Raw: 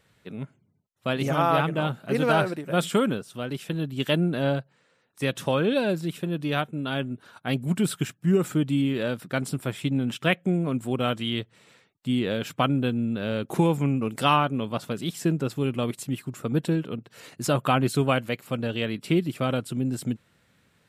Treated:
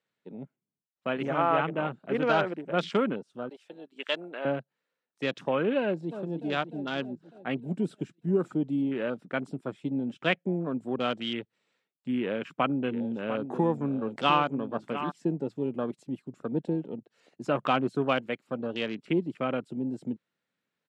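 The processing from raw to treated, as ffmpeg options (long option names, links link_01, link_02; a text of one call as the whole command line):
ffmpeg -i in.wav -filter_complex "[0:a]asettb=1/sr,asplit=3[link_01][link_02][link_03];[link_01]atrim=end=3.494[link_04];[link_02]atrim=start=3.49:end=4.45,asetpts=PTS-STARTPTS,afade=type=in:duration=0.004:curve=qsin,afade=type=out:start_time=0.956:duration=0.004:curve=qsin,highpass=620[link_05];[link_03]atrim=start=4.446[link_06];[link_04][link_05]acrossfade=duration=0.004:curve1=hsin:curve2=qsin[link_07];[link_07][link_06]acrossfade=duration=0.004:curve1=qsin:curve2=hsin,asplit=2[link_08][link_09];[link_09]afade=type=in:start_time=5.81:duration=0.01,afade=type=out:start_time=6.21:duration=0.01,aecho=0:1:300|600|900|1200|1500|1800|2100|2400|2700|3000|3300:0.354813|0.248369|0.173859|0.121701|0.0851907|0.0596335|0.0417434|0.0292204|0.0204543|0.014318|0.0100226[link_10];[link_08][link_10]amix=inputs=2:normalize=0,asplit=3[link_11][link_12][link_13];[link_11]afade=type=out:start_time=12.86:duration=0.02[link_14];[link_12]aecho=1:1:700:0.299,afade=type=in:start_time=12.86:duration=0.02,afade=type=out:start_time=15.1:duration=0.02[link_15];[link_13]afade=type=in:start_time=15.1:duration=0.02[link_16];[link_14][link_15][link_16]amix=inputs=3:normalize=0,afwtdn=0.0158,acrossover=split=170 8000:gain=0.0891 1 0.0631[link_17][link_18][link_19];[link_17][link_18][link_19]amix=inputs=3:normalize=0,volume=-2.5dB" out.wav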